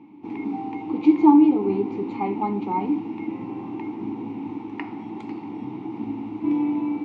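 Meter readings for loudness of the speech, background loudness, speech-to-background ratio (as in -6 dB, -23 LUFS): -21.0 LUFS, -30.5 LUFS, 9.5 dB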